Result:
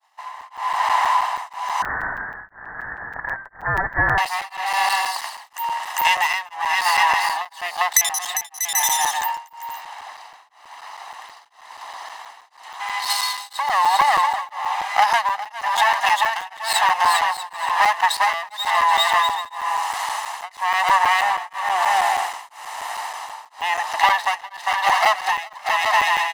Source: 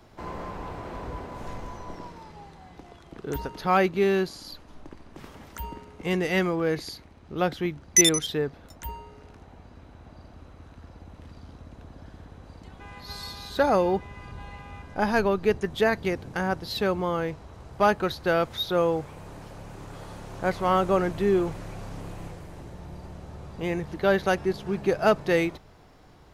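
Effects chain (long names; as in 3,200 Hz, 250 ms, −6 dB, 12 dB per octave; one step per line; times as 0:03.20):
lower of the sound and its delayed copy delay 1.1 ms
high-pass filter 780 Hz 24 dB per octave
bouncing-ball delay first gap 400 ms, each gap 0.6×, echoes 5
downward compressor 16 to 1, threshold −34 dBFS, peak gain reduction 19.5 dB
downward expander −54 dBFS
automatic gain control gain up to 16.5 dB
soft clipping −6 dBFS, distortion −32 dB
0:01.82–0:04.18: voice inversion scrambler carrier 2,500 Hz
comb filter 1 ms, depth 54%
regular buffer underruns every 0.16 s, samples 256, zero, from 0:00.41
tremolo along a rectified sine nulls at 1 Hz
level +4 dB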